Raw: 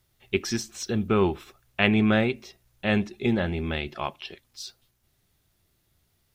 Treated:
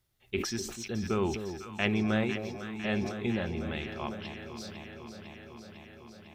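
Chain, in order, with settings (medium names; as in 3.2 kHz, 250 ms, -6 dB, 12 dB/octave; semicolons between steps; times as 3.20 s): echo whose repeats swap between lows and highs 251 ms, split 850 Hz, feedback 86%, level -8.5 dB; decay stretcher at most 62 dB/s; trim -8 dB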